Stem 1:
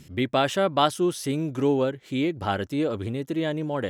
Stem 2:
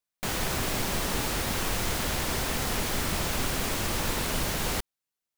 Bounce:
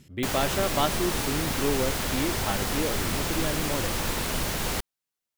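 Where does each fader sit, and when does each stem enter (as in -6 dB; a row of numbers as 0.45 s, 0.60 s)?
-5.0 dB, +0.5 dB; 0.00 s, 0.00 s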